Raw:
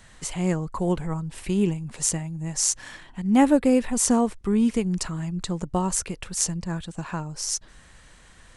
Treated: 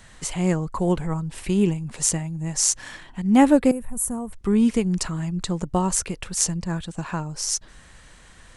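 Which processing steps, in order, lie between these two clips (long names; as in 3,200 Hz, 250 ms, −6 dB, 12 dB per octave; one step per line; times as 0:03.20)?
0:03.71–0:04.33: drawn EQ curve 140 Hz 0 dB, 280 Hz −15 dB, 1,100 Hz −13 dB, 5,000 Hz −28 dB, 11,000 Hz +4 dB
level +2.5 dB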